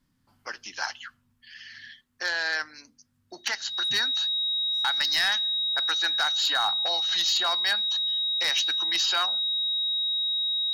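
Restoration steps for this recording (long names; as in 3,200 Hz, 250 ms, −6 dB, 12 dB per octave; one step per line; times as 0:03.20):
clipped peaks rebuilt −17 dBFS
notch filter 3,800 Hz, Q 30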